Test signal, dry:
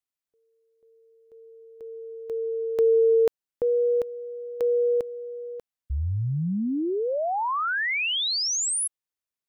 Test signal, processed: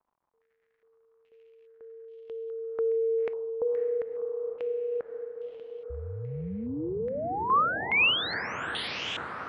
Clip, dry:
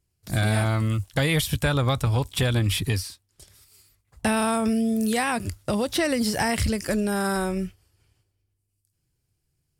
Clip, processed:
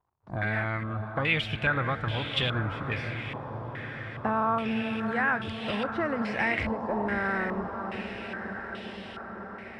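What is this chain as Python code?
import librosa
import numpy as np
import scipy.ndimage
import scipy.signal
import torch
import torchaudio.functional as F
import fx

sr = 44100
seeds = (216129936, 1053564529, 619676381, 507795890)

y = fx.low_shelf(x, sr, hz=120.0, db=-6.5)
y = fx.dmg_crackle(y, sr, seeds[0], per_s=160.0, level_db=-54.0)
y = fx.echo_diffused(y, sr, ms=540, feedback_pct=78, wet_db=-8)
y = fx.filter_held_lowpass(y, sr, hz=2.4, low_hz=980.0, high_hz=3100.0)
y = y * 10.0 ** (-7.0 / 20.0)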